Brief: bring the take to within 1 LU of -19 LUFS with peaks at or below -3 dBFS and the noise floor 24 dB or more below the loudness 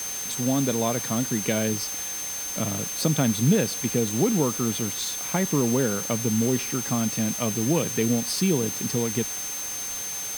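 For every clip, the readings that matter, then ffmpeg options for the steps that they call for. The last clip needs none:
steady tone 6.3 kHz; tone level -31 dBFS; noise floor -32 dBFS; noise floor target -49 dBFS; loudness -24.5 LUFS; peak level -8.0 dBFS; loudness target -19.0 LUFS
-> -af "bandreject=f=6300:w=30"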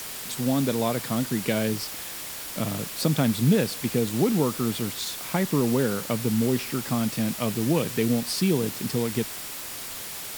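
steady tone not found; noise floor -36 dBFS; noise floor target -50 dBFS
-> -af "afftdn=nr=14:nf=-36"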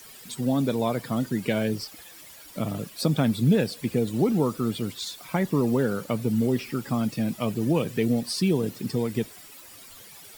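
noise floor -47 dBFS; noise floor target -50 dBFS
-> -af "afftdn=nr=6:nf=-47"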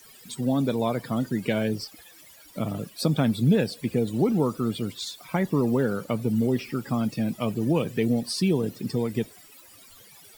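noise floor -51 dBFS; loudness -26.5 LUFS; peak level -9.5 dBFS; loudness target -19.0 LUFS
-> -af "volume=2.37,alimiter=limit=0.708:level=0:latency=1"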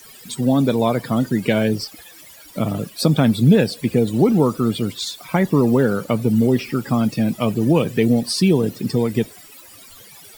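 loudness -19.0 LUFS; peak level -3.0 dBFS; noise floor -44 dBFS

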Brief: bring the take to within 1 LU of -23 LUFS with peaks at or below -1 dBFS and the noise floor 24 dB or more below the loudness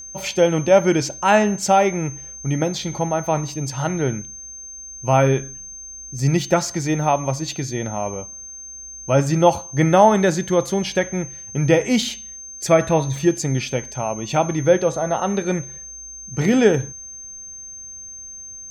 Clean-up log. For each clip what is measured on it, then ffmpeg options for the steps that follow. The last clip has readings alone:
steady tone 6.3 kHz; tone level -34 dBFS; loudness -20.0 LUFS; peak level -2.0 dBFS; loudness target -23.0 LUFS
-> -af "bandreject=f=6300:w=30"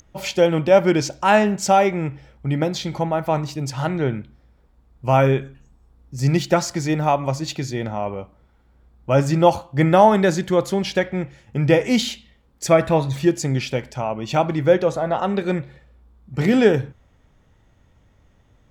steady tone not found; loudness -20.0 LUFS; peak level -2.0 dBFS; loudness target -23.0 LUFS
-> -af "volume=0.708"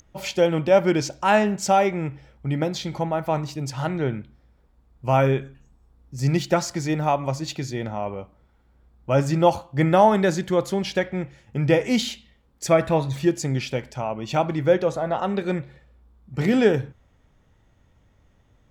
loudness -23.0 LUFS; peak level -5.0 dBFS; noise floor -60 dBFS

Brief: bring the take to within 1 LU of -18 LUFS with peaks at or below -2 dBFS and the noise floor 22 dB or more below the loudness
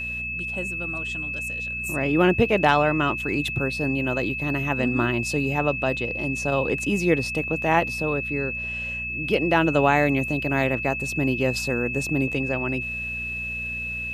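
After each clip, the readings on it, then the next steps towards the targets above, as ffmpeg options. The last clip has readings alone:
hum 60 Hz; highest harmonic 240 Hz; hum level -36 dBFS; steady tone 2.6 kHz; tone level -28 dBFS; loudness -23.5 LUFS; peak level -5.5 dBFS; loudness target -18.0 LUFS
-> -af "bandreject=f=60:t=h:w=4,bandreject=f=120:t=h:w=4,bandreject=f=180:t=h:w=4,bandreject=f=240:t=h:w=4"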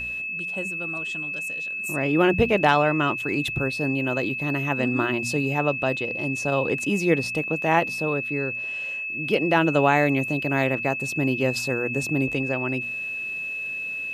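hum not found; steady tone 2.6 kHz; tone level -28 dBFS
-> -af "bandreject=f=2600:w=30"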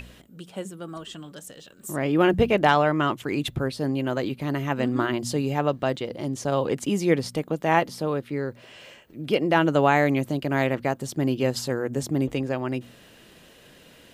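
steady tone not found; loudness -24.5 LUFS; peak level -6.5 dBFS; loudness target -18.0 LUFS
-> -af "volume=2.11,alimiter=limit=0.794:level=0:latency=1"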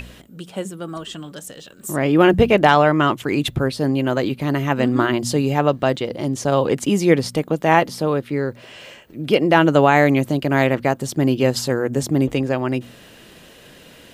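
loudness -18.5 LUFS; peak level -2.0 dBFS; noise floor -45 dBFS

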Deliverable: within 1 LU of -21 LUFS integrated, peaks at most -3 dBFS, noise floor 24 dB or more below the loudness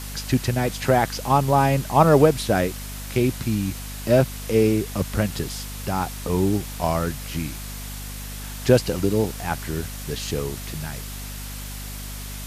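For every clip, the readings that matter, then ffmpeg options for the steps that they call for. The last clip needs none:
hum 50 Hz; highest harmonic 250 Hz; hum level -33 dBFS; noise floor -34 dBFS; noise floor target -47 dBFS; loudness -22.5 LUFS; peak level -2.5 dBFS; loudness target -21.0 LUFS
-> -af "bandreject=f=50:t=h:w=4,bandreject=f=100:t=h:w=4,bandreject=f=150:t=h:w=4,bandreject=f=200:t=h:w=4,bandreject=f=250:t=h:w=4"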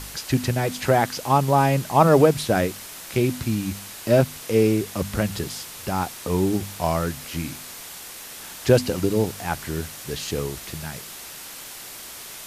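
hum not found; noise floor -39 dBFS; noise floor target -47 dBFS
-> -af "afftdn=nr=8:nf=-39"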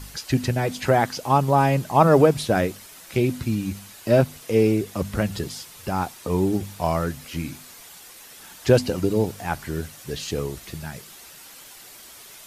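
noise floor -45 dBFS; noise floor target -47 dBFS
-> -af "afftdn=nr=6:nf=-45"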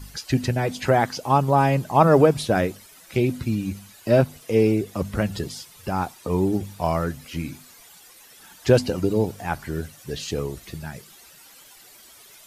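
noise floor -49 dBFS; loudness -23.0 LUFS; peak level -3.5 dBFS; loudness target -21.0 LUFS
-> -af "volume=1.26,alimiter=limit=0.708:level=0:latency=1"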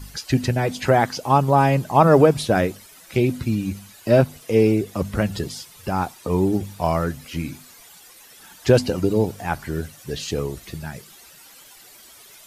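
loudness -21.0 LUFS; peak level -3.0 dBFS; noise floor -47 dBFS

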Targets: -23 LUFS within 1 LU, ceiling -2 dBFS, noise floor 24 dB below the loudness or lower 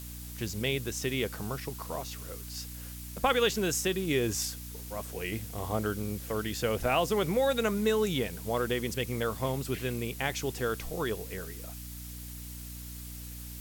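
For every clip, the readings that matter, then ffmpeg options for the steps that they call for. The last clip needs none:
hum 60 Hz; highest harmonic 300 Hz; hum level -41 dBFS; noise floor -42 dBFS; noise floor target -56 dBFS; loudness -32.0 LUFS; peak level -12.5 dBFS; loudness target -23.0 LUFS
-> -af "bandreject=f=60:t=h:w=4,bandreject=f=120:t=h:w=4,bandreject=f=180:t=h:w=4,bandreject=f=240:t=h:w=4,bandreject=f=300:t=h:w=4"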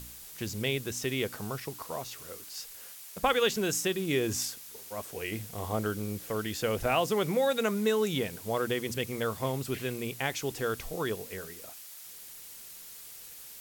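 hum not found; noise floor -47 dBFS; noise floor target -56 dBFS
-> -af "afftdn=nr=9:nf=-47"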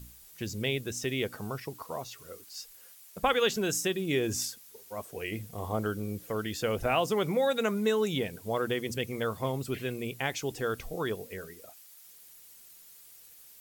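noise floor -54 dBFS; noise floor target -56 dBFS
-> -af "afftdn=nr=6:nf=-54"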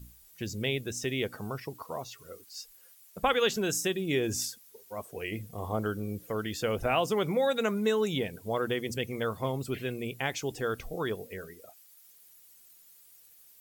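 noise floor -58 dBFS; loudness -31.5 LUFS; peak level -13.5 dBFS; loudness target -23.0 LUFS
-> -af "volume=2.66"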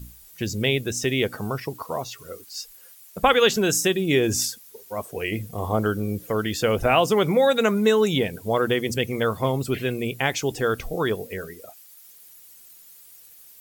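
loudness -23.0 LUFS; peak level -5.0 dBFS; noise floor -49 dBFS

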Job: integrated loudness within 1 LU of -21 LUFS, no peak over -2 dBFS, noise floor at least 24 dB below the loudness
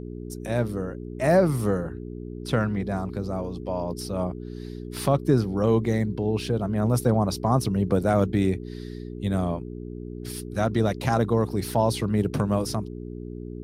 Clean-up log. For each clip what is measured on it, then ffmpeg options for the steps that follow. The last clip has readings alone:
hum 60 Hz; highest harmonic 420 Hz; hum level -33 dBFS; loudness -25.5 LUFS; peak level -8.0 dBFS; loudness target -21.0 LUFS
-> -af "bandreject=f=60:t=h:w=4,bandreject=f=120:t=h:w=4,bandreject=f=180:t=h:w=4,bandreject=f=240:t=h:w=4,bandreject=f=300:t=h:w=4,bandreject=f=360:t=h:w=4,bandreject=f=420:t=h:w=4"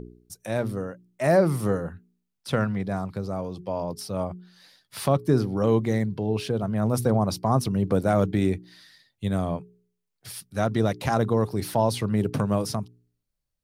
hum not found; loudness -25.5 LUFS; peak level -8.0 dBFS; loudness target -21.0 LUFS
-> -af "volume=1.68"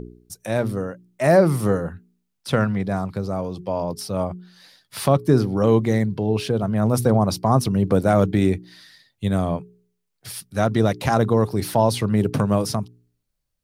loudness -21.0 LUFS; peak level -3.5 dBFS; noise floor -76 dBFS

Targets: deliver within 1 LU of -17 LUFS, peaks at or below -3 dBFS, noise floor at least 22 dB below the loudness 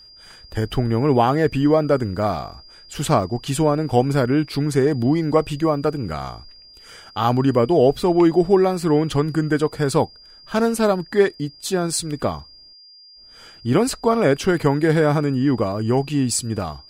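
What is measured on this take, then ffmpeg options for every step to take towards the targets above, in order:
steady tone 4.8 kHz; tone level -44 dBFS; loudness -19.5 LUFS; peak level -4.0 dBFS; loudness target -17.0 LUFS
-> -af "bandreject=f=4800:w=30"
-af "volume=1.33,alimiter=limit=0.708:level=0:latency=1"

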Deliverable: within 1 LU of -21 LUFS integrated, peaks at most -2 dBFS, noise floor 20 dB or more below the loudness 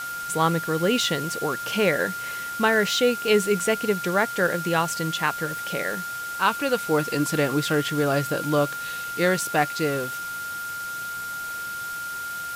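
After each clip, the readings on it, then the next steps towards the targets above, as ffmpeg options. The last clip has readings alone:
steady tone 1.4 kHz; tone level -30 dBFS; noise floor -32 dBFS; noise floor target -45 dBFS; loudness -24.5 LUFS; peak level -7.5 dBFS; loudness target -21.0 LUFS
-> -af "bandreject=f=1400:w=30"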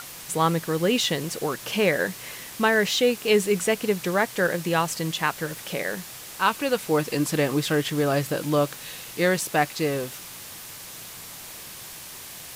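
steady tone not found; noise floor -41 dBFS; noise floor target -45 dBFS
-> -af "afftdn=nr=6:nf=-41"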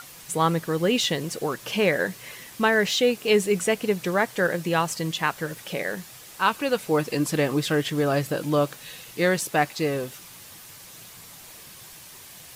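noise floor -45 dBFS; loudness -24.5 LUFS; peak level -8.0 dBFS; loudness target -21.0 LUFS
-> -af "volume=1.5"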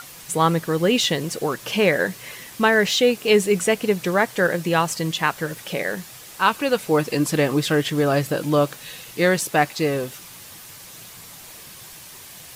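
loudness -21.0 LUFS; peak level -4.5 dBFS; noise floor -42 dBFS

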